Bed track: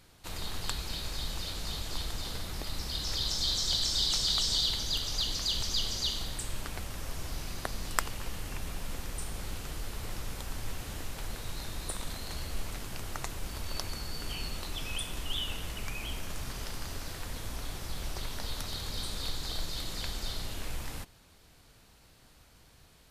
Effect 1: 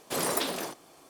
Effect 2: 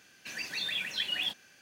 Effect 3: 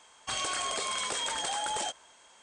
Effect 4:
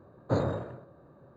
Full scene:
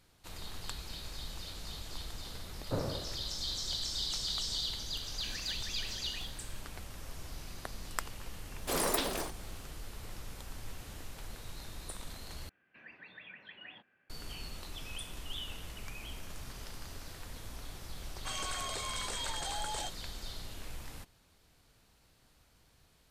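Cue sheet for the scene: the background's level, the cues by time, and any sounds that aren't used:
bed track -7 dB
2.41 s: add 4 -8 dB
4.98 s: add 2 -1 dB + compression, threshold -42 dBFS
8.57 s: add 1 -2.5 dB
12.49 s: replace with 2 -10.5 dB + low-pass 2.2 kHz 24 dB/octave
17.98 s: add 3 -6.5 dB

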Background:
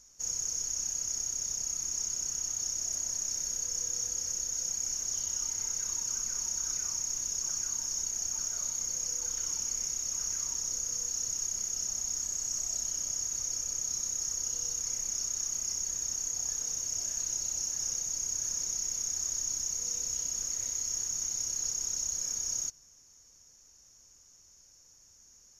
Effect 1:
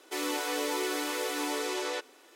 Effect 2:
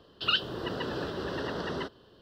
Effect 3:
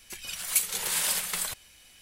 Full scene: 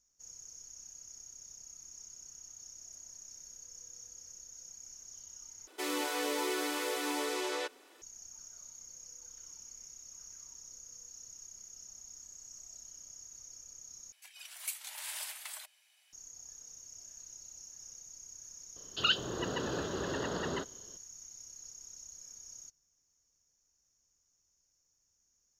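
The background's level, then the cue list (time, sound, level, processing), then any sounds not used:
background -17 dB
5.67 s: replace with 1 -2.5 dB
14.12 s: replace with 3 -11.5 dB + rippled Chebyshev high-pass 600 Hz, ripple 3 dB
18.76 s: add 2 -2 dB

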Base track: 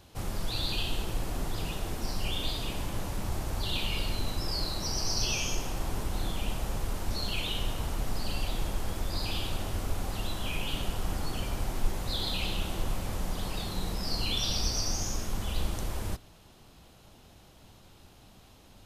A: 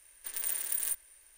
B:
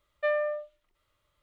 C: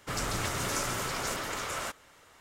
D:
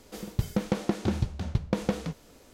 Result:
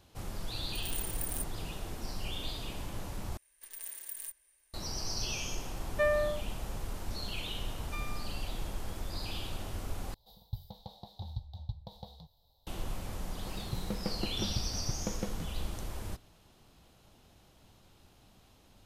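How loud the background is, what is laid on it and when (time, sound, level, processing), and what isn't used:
base track -6 dB
0.49 s: add A -6 dB
3.37 s: replace with A -10 dB + band-stop 1.4 kHz, Q 10
5.76 s: add B -1 dB
7.69 s: add B -9 dB + comb filter that takes the minimum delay 2.5 ms
10.14 s: replace with D -9.5 dB + FFT filter 110 Hz 0 dB, 310 Hz -28 dB, 850 Hz 0 dB, 1.4 kHz -29 dB, 2.6 kHz -28 dB, 3.8 kHz +7 dB, 6.4 kHz -20 dB, 9.4 kHz -18 dB, 14 kHz +2 dB
13.34 s: add D -10 dB
not used: C

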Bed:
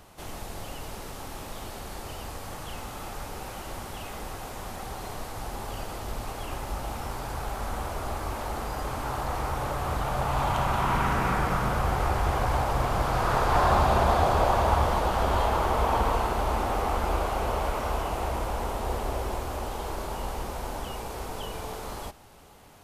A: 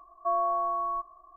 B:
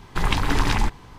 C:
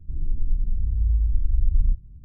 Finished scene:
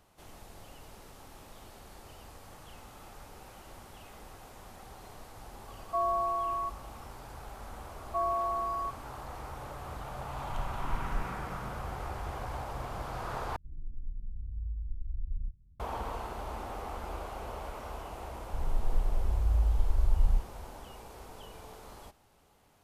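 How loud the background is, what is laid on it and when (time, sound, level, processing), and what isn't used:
bed -12.5 dB
5.68 s: add A -2.5 dB
7.89 s: add A -3.5 dB
10.34 s: add B -16.5 dB + spectral contrast expander 2.5:1
13.56 s: replace with C -16 dB
18.45 s: add C -5.5 dB

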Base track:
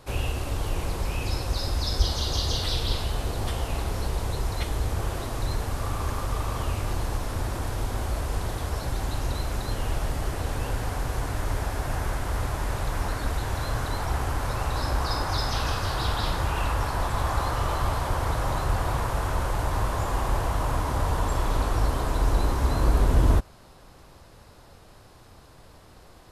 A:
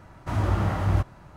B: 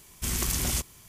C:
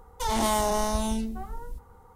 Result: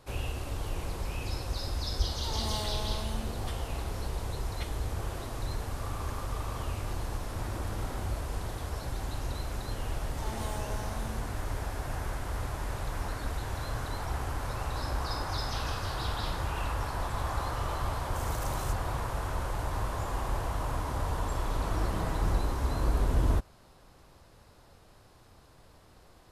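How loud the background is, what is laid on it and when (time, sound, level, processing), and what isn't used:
base track -6.5 dB
2.03 s: add C -13.5 dB
7.12 s: add A -6 dB + compression 2.5:1, threshold -35 dBFS
9.97 s: add C -15.5 dB
17.92 s: add B -15.5 dB
21.36 s: add A -12.5 dB + comb 6.1 ms, depth 89%

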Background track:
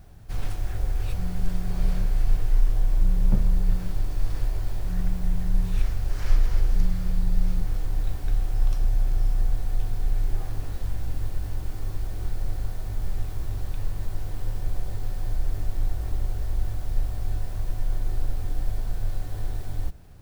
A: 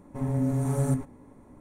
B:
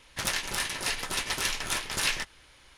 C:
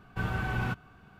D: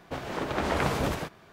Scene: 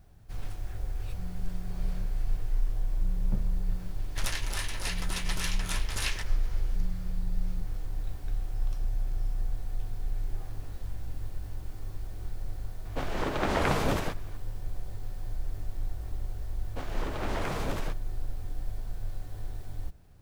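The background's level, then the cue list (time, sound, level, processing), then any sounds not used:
background track -8 dB
3.99 s: add B -5.5 dB
12.85 s: add D
16.65 s: add D -16 dB + waveshaping leveller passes 3
not used: A, C

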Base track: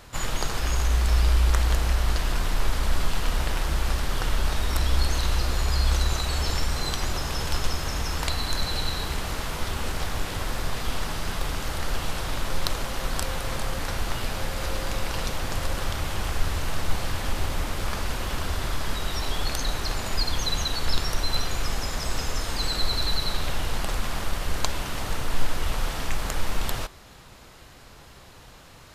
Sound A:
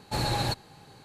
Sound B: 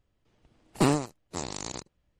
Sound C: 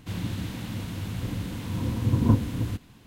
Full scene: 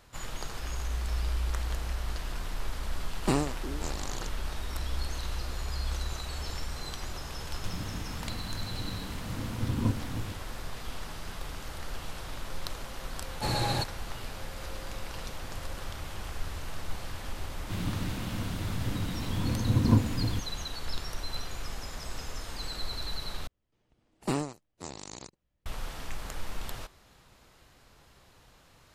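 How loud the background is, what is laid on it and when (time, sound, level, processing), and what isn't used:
base track -10.5 dB
2.47 s: add B -4 dB + repeats whose band climbs or falls 357 ms, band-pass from 330 Hz, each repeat 1.4 oct, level -11 dB
7.56 s: add C -8 dB
13.30 s: add A -1.5 dB
17.63 s: add C -2 dB
23.47 s: replace with B -7 dB

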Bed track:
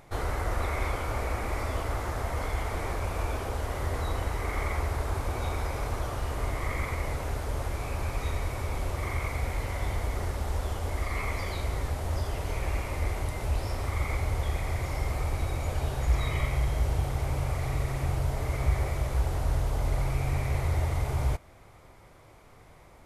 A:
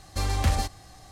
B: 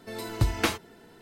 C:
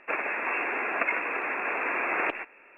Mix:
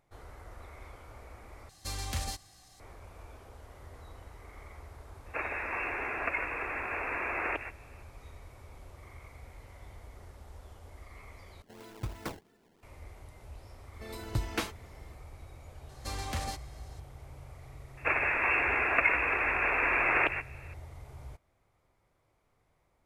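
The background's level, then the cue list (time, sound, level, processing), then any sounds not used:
bed track -19 dB
1.69 s: replace with A -12.5 dB + treble shelf 2.3 kHz +10 dB
5.26 s: add C -5.5 dB
11.62 s: replace with B -13.5 dB + decimation with a swept rate 21×, swing 160% 3 Hz
13.94 s: add B -7.5 dB
15.89 s: add A -7 dB + bass shelf 170 Hz -9 dB
17.97 s: add C -1.5 dB + peaking EQ 3.7 kHz +5.5 dB 2.2 oct

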